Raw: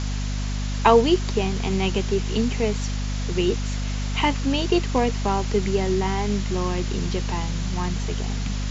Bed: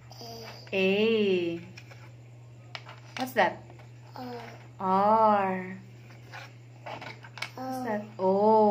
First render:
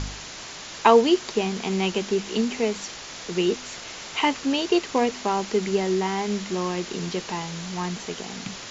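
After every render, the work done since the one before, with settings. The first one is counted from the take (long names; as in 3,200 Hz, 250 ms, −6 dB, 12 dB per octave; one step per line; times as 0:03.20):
hum removal 50 Hz, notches 5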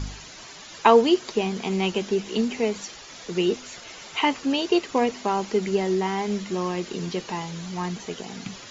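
broadband denoise 10 dB, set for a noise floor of −39 dBFS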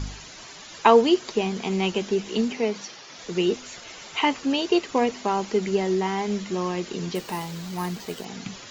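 0:02.52–0:03.19: elliptic band-pass filter 130–5,900 Hz
0:07.15–0:08.25: bad sample-rate conversion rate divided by 4×, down none, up hold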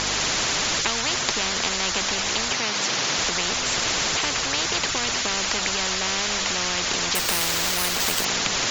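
upward compression, threshold −26 dBFS
every bin compressed towards the loudest bin 10 to 1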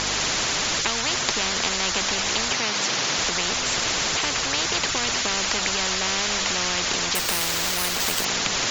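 speech leveller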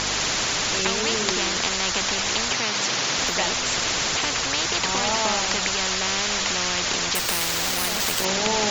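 mix in bed −5 dB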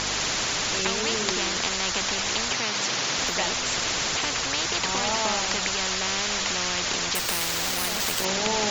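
level −2.5 dB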